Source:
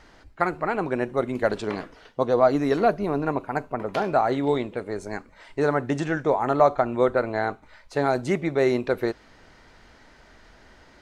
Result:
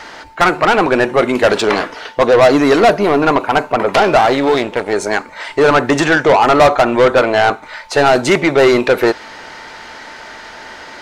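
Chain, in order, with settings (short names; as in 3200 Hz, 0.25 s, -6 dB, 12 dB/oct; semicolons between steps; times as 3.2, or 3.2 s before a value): 4.17–4.93 half-wave gain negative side -12 dB; overdrive pedal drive 24 dB, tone 7500 Hz, clips at -5.5 dBFS; whine 890 Hz -44 dBFS; gain +4.5 dB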